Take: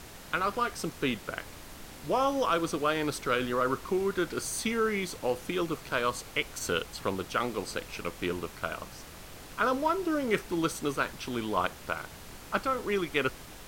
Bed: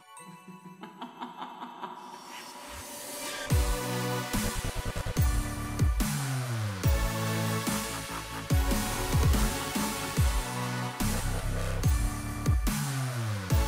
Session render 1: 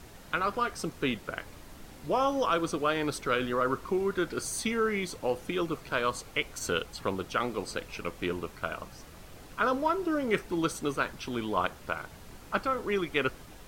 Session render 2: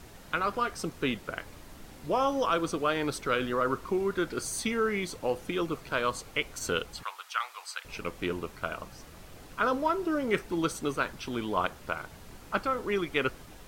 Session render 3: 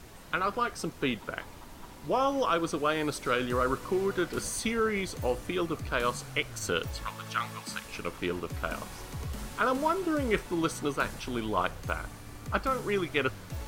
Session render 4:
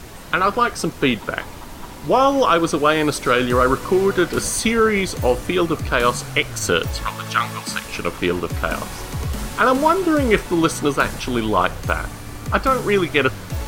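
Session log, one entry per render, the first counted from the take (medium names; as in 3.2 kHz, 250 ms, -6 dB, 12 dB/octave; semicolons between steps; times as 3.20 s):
noise reduction 6 dB, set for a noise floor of -47 dBFS
7.03–7.85 s: inverse Chebyshev high-pass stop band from 210 Hz, stop band 70 dB
add bed -13 dB
trim +12 dB; peak limiter -3 dBFS, peak gain reduction 2 dB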